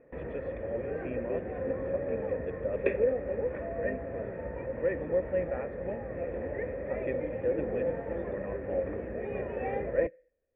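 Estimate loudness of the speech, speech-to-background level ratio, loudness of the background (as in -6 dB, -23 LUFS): -37.0 LUFS, -2.0 dB, -35.0 LUFS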